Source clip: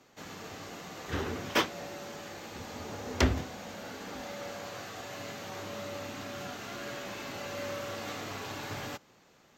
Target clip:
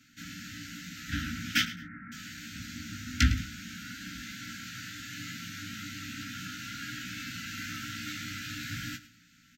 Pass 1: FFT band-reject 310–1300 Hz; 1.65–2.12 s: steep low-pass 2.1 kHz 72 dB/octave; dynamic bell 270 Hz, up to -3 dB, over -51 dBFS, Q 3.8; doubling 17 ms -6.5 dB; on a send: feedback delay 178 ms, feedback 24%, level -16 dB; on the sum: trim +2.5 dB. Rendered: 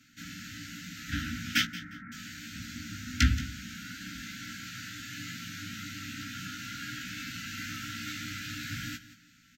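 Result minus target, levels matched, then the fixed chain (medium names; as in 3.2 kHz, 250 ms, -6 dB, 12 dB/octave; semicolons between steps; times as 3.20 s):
echo 71 ms late
FFT band-reject 310–1300 Hz; 1.65–2.12 s: steep low-pass 2.1 kHz 72 dB/octave; dynamic bell 270 Hz, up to -3 dB, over -51 dBFS, Q 3.8; doubling 17 ms -6.5 dB; on a send: feedback delay 107 ms, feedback 24%, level -16 dB; on the sum: trim +2.5 dB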